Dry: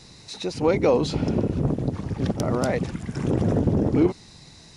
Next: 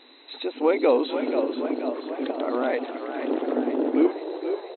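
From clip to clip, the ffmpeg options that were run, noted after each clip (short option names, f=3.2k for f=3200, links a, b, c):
-filter_complex "[0:a]afftfilt=real='re*between(b*sr/4096,240,4100)':imag='im*between(b*sr/4096,240,4100)':win_size=4096:overlap=0.75,asplit=8[a][b][c][d][e][f][g][h];[b]adelay=483,afreqshift=54,volume=-8.5dB[i];[c]adelay=966,afreqshift=108,volume=-13.2dB[j];[d]adelay=1449,afreqshift=162,volume=-18dB[k];[e]adelay=1932,afreqshift=216,volume=-22.7dB[l];[f]adelay=2415,afreqshift=270,volume=-27.4dB[m];[g]adelay=2898,afreqshift=324,volume=-32.2dB[n];[h]adelay=3381,afreqshift=378,volume=-36.9dB[o];[a][i][j][k][l][m][n][o]amix=inputs=8:normalize=0"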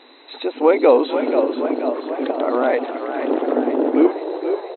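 -af "equalizer=f=790:w=0.34:g=8"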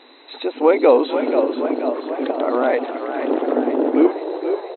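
-af anull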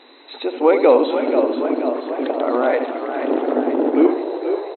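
-filter_complex "[0:a]asplit=2[a][b];[b]adelay=74,lowpass=f=2k:p=1,volume=-9dB,asplit=2[c][d];[d]adelay=74,lowpass=f=2k:p=1,volume=0.5,asplit=2[e][f];[f]adelay=74,lowpass=f=2k:p=1,volume=0.5,asplit=2[g][h];[h]adelay=74,lowpass=f=2k:p=1,volume=0.5,asplit=2[i][j];[j]adelay=74,lowpass=f=2k:p=1,volume=0.5,asplit=2[k][l];[l]adelay=74,lowpass=f=2k:p=1,volume=0.5[m];[a][c][e][g][i][k][m]amix=inputs=7:normalize=0"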